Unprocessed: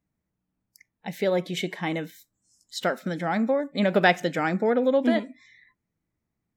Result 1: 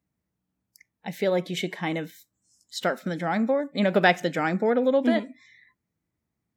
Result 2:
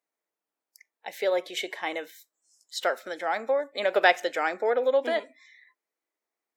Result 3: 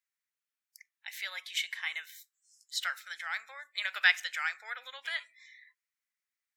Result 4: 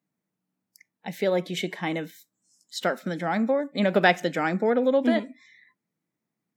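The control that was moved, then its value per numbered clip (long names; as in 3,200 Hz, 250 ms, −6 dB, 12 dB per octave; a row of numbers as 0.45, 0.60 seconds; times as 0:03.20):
high-pass filter, corner frequency: 45, 420, 1,500, 150 Hertz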